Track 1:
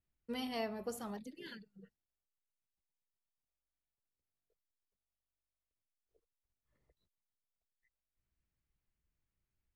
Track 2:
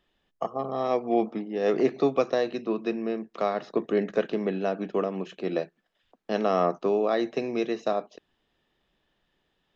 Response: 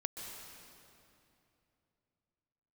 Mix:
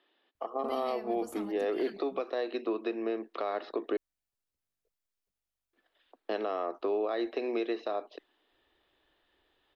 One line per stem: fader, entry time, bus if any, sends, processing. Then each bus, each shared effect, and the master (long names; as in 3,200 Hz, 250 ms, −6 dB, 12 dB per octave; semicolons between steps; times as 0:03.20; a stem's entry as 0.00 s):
+2.5 dB, 0.35 s, no send, downward compressor, threshold −42 dBFS, peak gain reduction 8 dB
+2.5 dB, 0.00 s, muted 0:03.97–0:05.73, no send, downward compressor 6 to 1, threshold −28 dBFS, peak gain reduction 11 dB; elliptic band-pass filter 300–4,300 Hz, stop band 40 dB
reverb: not used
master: brickwall limiter −22.5 dBFS, peak gain reduction 8 dB